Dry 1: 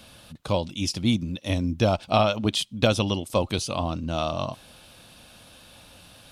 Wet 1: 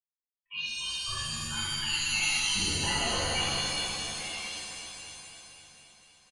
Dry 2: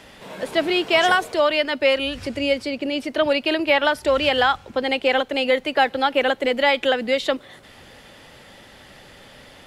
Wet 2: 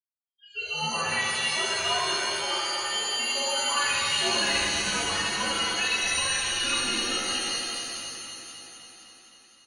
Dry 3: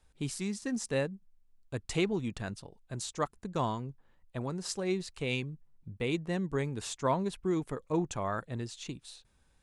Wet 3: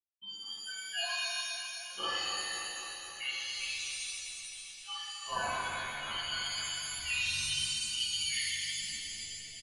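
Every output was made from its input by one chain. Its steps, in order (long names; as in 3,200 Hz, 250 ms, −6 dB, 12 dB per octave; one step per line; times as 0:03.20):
spectral dynamics exaggerated over time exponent 3
high-pass filter 240 Hz 24 dB per octave
notch filter 1,000 Hz, Q 9.8
downward expander −57 dBFS
low-shelf EQ 470 Hz −10 dB
comb filter 6.3 ms, depth 94%
downward compressor, threshold −30 dBFS
delay that swaps between a low-pass and a high-pass 129 ms, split 1,300 Hz, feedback 83%, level −6.5 dB
voice inversion scrambler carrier 3,400 Hz
reverb with rising layers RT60 1.8 s, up +7 semitones, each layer −2 dB, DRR −11.5 dB
level −7.5 dB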